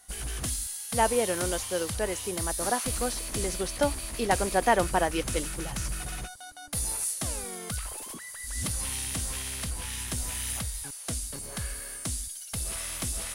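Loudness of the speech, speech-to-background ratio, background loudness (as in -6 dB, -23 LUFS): -30.0 LUFS, 2.5 dB, -32.5 LUFS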